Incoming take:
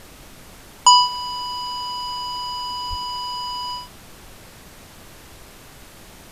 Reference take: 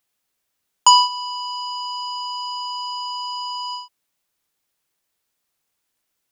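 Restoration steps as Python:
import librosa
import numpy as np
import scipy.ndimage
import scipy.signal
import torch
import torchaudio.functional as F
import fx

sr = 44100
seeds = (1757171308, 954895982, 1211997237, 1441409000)

y = fx.highpass(x, sr, hz=140.0, slope=24, at=(2.89, 3.01), fade=0.02)
y = fx.noise_reduce(y, sr, print_start_s=4.46, print_end_s=4.96, reduce_db=30.0)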